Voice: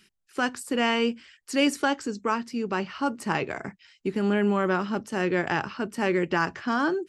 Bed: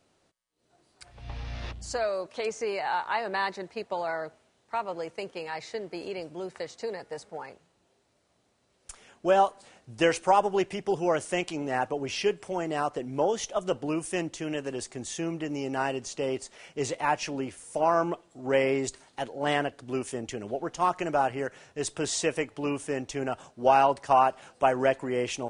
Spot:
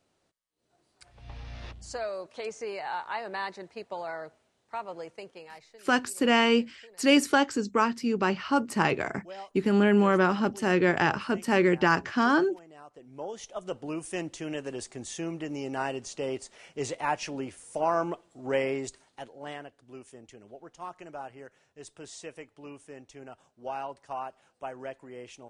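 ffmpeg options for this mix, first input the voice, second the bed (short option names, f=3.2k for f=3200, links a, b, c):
-filter_complex "[0:a]adelay=5500,volume=2dB[a];[1:a]volume=13.5dB,afade=t=out:st=5.01:d=0.79:silence=0.158489,afade=t=in:st=12.89:d=1.45:silence=0.11885,afade=t=out:st=18.45:d=1.14:silence=0.237137[b];[a][b]amix=inputs=2:normalize=0"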